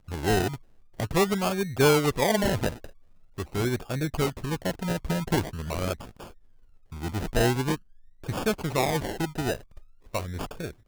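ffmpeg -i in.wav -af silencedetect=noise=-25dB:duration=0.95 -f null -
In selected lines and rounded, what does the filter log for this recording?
silence_start: 5.93
silence_end: 7.04 | silence_duration: 1.11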